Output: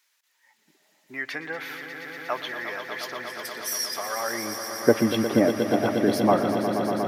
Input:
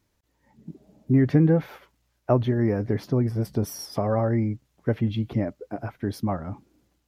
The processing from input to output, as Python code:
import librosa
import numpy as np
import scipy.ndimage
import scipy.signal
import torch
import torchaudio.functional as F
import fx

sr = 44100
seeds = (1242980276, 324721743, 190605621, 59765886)

p1 = fx.filter_sweep_highpass(x, sr, from_hz=1700.0, to_hz=310.0, start_s=4.18, end_s=4.71, q=0.92)
p2 = p1 + fx.echo_swell(p1, sr, ms=119, loudest=5, wet_db=-10.5, dry=0)
y = F.gain(torch.from_numpy(p2), 8.5).numpy()